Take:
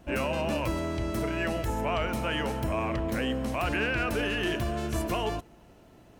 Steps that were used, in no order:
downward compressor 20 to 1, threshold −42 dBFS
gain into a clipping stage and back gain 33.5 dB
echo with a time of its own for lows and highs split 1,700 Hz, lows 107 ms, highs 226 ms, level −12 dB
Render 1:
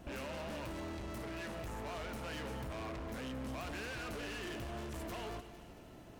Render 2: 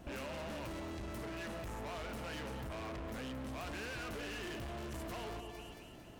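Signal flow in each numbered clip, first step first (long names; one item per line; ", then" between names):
gain into a clipping stage and back, then downward compressor, then echo with a time of its own for lows and highs
echo with a time of its own for lows and highs, then gain into a clipping stage and back, then downward compressor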